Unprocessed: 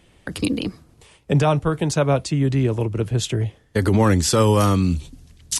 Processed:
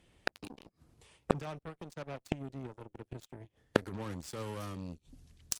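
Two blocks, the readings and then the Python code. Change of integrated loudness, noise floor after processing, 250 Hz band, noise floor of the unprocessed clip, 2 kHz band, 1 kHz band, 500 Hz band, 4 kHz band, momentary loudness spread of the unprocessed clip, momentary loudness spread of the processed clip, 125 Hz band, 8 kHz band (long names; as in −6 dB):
−19.5 dB, −81 dBFS, −20.0 dB, −56 dBFS, −12.0 dB, −18.0 dB, −18.0 dB, −18.5 dB, 9 LU, 16 LU, −24.5 dB, −18.5 dB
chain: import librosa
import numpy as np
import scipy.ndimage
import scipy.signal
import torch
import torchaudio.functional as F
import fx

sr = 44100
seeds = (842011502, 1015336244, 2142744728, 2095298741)

y = fx.cheby_harmonics(x, sr, harmonics=(7,), levels_db=(-16,), full_scale_db=-7.5)
y = fx.gate_flip(y, sr, shuts_db=-18.0, range_db=-32)
y = F.gain(torch.from_numpy(y), 7.5).numpy()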